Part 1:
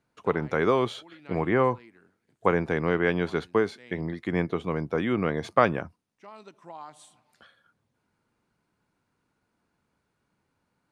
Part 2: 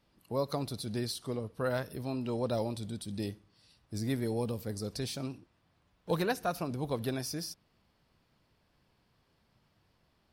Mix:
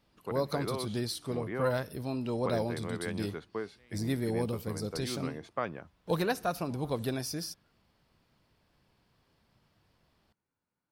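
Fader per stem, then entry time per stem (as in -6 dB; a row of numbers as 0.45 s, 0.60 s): -13.5 dB, +1.0 dB; 0.00 s, 0.00 s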